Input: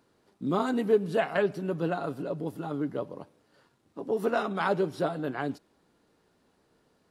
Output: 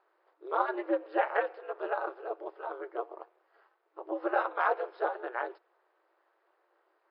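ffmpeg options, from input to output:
ffmpeg -i in.wav -filter_complex "[0:a]acrossover=split=560 2100:gain=0.2 1 0.0891[link_01][link_02][link_03];[link_01][link_02][link_03]amix=inputs=3:normalize=0,aeval=exprs='val(0)*sin(2*PI*120*n/s)':channel_layout=same,afftfilt=real='re*between(b*sr/4096,320,5300)':imag='im*between(b*sr/4096,320,5300)':win_size=4096:overlap=0.75,volume=5.5dB" out.wav

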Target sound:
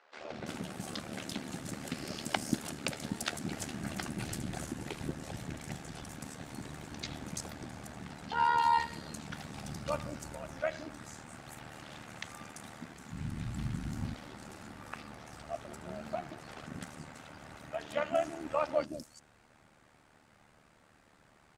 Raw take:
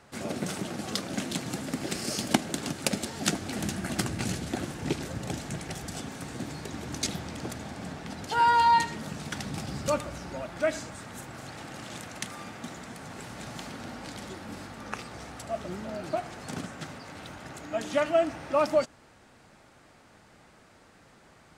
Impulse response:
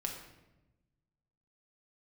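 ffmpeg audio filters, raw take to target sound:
-filter_complex "[0:a]asplit=3[link_01][link_02][link_03];[link_01]afade=type=out:start_time=12.93:duration=0.02[link_04];[link_02]asubboost=boost=10.5:cutoff=160,afade=type=in:start_time=12.93:duration=0.02,afade=type=out:start_time=13.95:duration=0.02[link_05];[link_03]afade=type=in:start_time=13.95:duration=0.02[link_06];[link_04][link_05][link_06]amix=inputs=3:normalize=0,acrossover=split=390|5200[link_07][link_08][link_09];[link_07]adelay=180[link_10];[link_09]adelay=340[link_11];[link_10][link_08][link_11]amix=inputs=3:normalize=0,tremolo=f=75:d=0.71,volume=-3dB"

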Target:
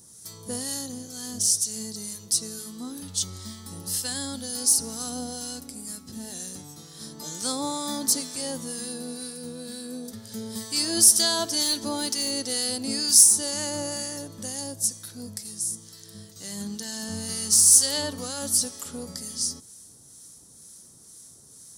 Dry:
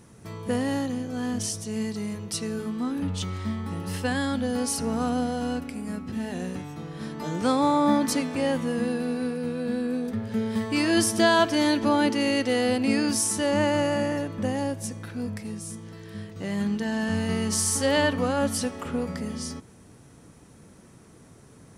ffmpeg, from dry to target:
ffmpeg -i in.wav -filter_complex "[0:a]aexciter=amount=8.1:drive=7.9:freq=3800,asettb=1/sr,asplit=3[link_01][link_02][link_03];[link_01]atrim=end=11.634[link_04];[link_02]atrim=start=11.63:end=12.31,asetpts=PTS-STARTPTS,afade=type=in:duration=0.004:curve=qsin,afade=type=out:start_time=0.676:duration=0.004:curve=qsin,asoftclip=type=hard:threshold=-10.5dB[link_05];[link_03]atrim=start=12.306[link_06];[link_04][link_05]acrossfade=duration=0.004:curve1=hsin:curve2=qsin[link_07];[link_07][link_06]acrossfade=duration=0.004:curve1=qsin:curve2=hsin,acrossover=split=1200[link_08][link_09];[link_08]aeval=exprs='val(0)*(1-0.5/2+0.5/2*cos(2*PI*2.1*n/s))':channel_layout=same[link_10];[link_09]aeval=exprs='val(0)*(1-0.5/2-0.5/2*cos(2*PI*2.1*n/s))':channel_layout=same[link_11];[link_10][link_11]amix=inputs=2:normalize=0,volume=-7.5dB" out.wav

